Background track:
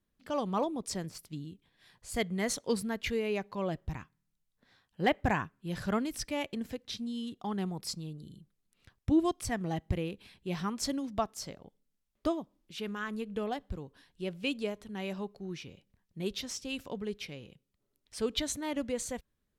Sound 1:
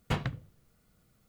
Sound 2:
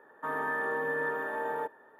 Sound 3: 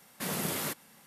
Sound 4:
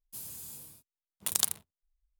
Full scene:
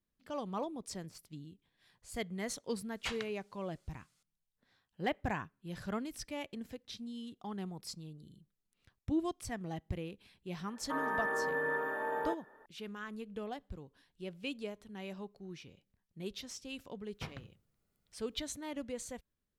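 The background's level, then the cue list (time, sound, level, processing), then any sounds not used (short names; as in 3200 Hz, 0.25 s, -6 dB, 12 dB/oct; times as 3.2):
background track -7 dB
2.95 add 1 -9 dB + weighting filter ITU-R 468
10.67 add 2 -2.5 dB
17.11 add 1 -14 dB
not used: 3, 4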